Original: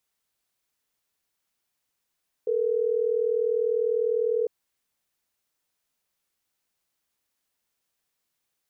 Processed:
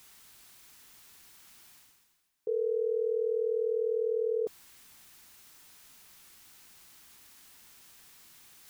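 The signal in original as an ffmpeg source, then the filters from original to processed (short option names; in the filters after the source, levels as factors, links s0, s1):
-f lavfi -i "aevalsrc='0.0596*(sin(2*PI*440*t)+sin(2*PI*480*t))*clip(min(mod(t,6),2-mod(t,6))/0.005,0,1)':d=3.12:s=44100"
-af "equalizer=f=550:w=2.1:g=-8,areverse,acompressor=mode=upward:threshold=0.0158:ratio=2.5,areverse"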